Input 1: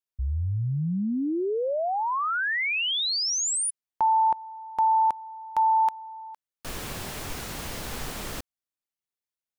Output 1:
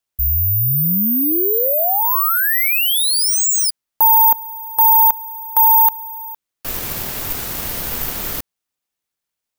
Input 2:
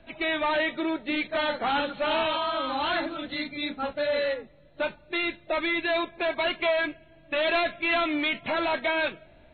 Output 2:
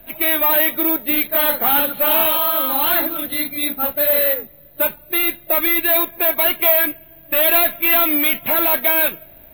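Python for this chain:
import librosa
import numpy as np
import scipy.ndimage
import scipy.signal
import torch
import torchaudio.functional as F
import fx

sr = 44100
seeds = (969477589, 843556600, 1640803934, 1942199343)

y = (np.kron(x[::3], np.eye(3)[0]) * 3)[:len(x)]
y = y * librosa.db_to_amplitude(5.5)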